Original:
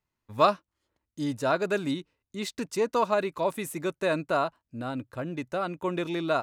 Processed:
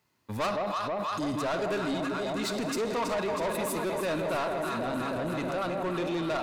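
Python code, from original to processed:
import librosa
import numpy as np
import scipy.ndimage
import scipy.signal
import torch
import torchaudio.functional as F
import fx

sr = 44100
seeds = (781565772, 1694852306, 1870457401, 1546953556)

p1 = scipy.signal.sosfilt(scipy.signal.butter(2, 130.0, 'highpass', fs=sr, output='sos'), x)
p2 = fx.peak_eq(p1, sr, hz=4500.0, db=3.5, octaves=0.31)
p3 = fx.echo_alternate(p2, sr, ms=161, hz=920.0, feedback_pct=85, wet_db=-6.5)
p4 = fx.rev_schroeder(p3, sr, rt60_s=1.1, comb_ms=32, drr_db=13.0)
p5 = fx.over_compress(p4, sr, threshold_db=-40.0, ratio=-1.0)
p6 = p4 + (p5 * librosa.db_to_amplitude(-1.0))
y = 10.0 ** (-26.0 / 20.0) * np.tanh(p6 / 10.0 ** (-26.0 / 20.0))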